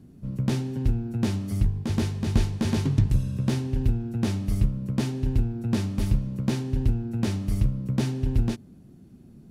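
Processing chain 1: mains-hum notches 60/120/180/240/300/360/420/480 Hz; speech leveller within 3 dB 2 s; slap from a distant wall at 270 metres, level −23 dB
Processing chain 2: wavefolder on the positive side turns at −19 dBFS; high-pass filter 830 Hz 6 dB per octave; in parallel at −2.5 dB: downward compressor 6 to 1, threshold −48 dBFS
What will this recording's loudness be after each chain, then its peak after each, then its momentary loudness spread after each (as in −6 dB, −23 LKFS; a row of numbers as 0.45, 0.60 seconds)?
−27.5, −38.0 LKFS; −10.5, −15.0 dBFS; 2, 5 LU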